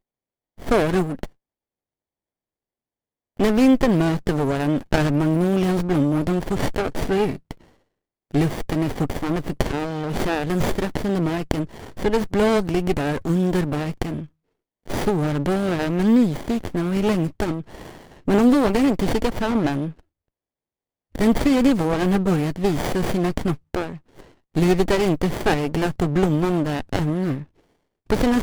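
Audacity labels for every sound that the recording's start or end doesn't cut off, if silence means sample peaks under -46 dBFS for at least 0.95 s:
3.370000	20.000000	sound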